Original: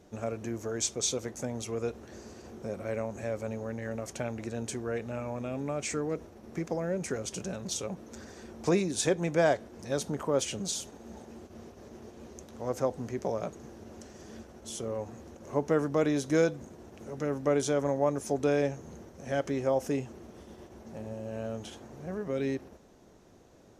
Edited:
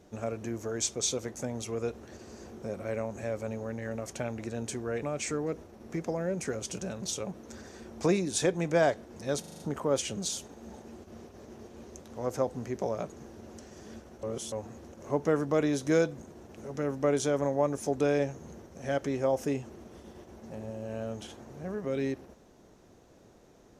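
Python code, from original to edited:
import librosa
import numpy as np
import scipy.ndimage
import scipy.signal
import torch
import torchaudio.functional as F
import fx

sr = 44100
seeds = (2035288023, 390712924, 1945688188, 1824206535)

y = fx.edit(x, sr, fx.reverse_span(start_s=2.17, length_s=0.27),
    fx.cut(start_s=5.03, length_s=0.63),
    fx.stutter(start_s=10.03, slice_s=0.04, count=6),
    fx.reverse_span(start_s=14.66, length_s=0.29), tone=tone)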